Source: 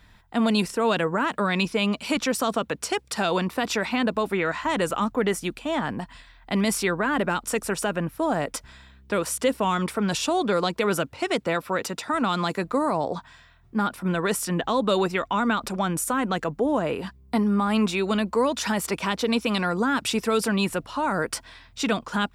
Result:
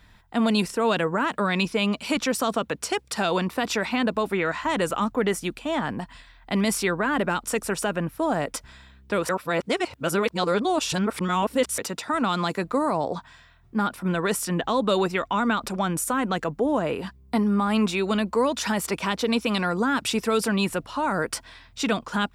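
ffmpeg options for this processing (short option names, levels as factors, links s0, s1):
-filter_complex "[0:a]asplit=3[s0][s1][s2];[s0]atrim=end=9.292[s3];[s1]atrim=start=9.288:end=11.782,asetpts=PTS-STARTPTS,areverse[s4];[s2]atrim=start=11.778[s5];[s3][s4]acrossfade=d=0.004:c1=hsin:c2=hsin[s6];[s6][s5]acrossfade=d=0.004:c1=hsin:c2=hsin"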